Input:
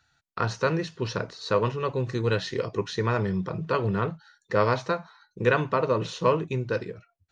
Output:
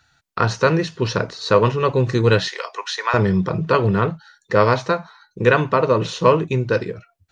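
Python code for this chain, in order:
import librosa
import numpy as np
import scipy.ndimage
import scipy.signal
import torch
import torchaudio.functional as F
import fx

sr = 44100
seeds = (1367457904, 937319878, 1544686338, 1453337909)

p1 = fx.highpass(x, sr, hz=730.0, slope=24, at=(2.48, 3.14))
p2 = fx.rider(p1, sr, range_db=10, speed_s=2.0)
p3 = p1 + (p2 * librosa.db_to_amplitude(2.5))
y = p3 * librosa.db_to_amplitude(1.0)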